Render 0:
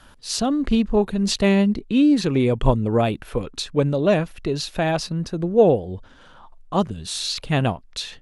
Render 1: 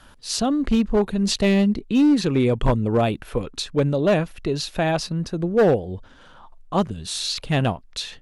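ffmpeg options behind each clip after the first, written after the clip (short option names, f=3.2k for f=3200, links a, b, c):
-af "asoftclip=type=hard:threshold=-12dB"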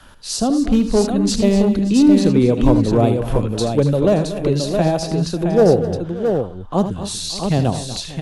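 -filter_complex "[0:a]acrossover=split=200|910|4800[a][b][c][d];[c]acompressor=threshold=-40dB:ratio=6[e];[a][b][e][d]amix=inputs=4:normalize=0,aecho=1:1:78|89|238|263|576|668:0.282|0.106|0.211|0.133|0.119|0.531,volume=4dB"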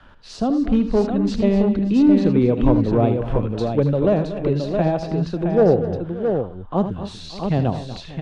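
-af "lowpass=2.7k,volume=-2.5dB"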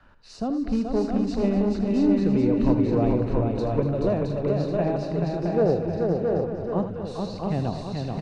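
-af "bandreject=f=3.3k:w=5,aecho=1:1:430|709.5|891.2|1009|1086:0.631|0.398|0.251|0.158|0.1,volume=-7dB"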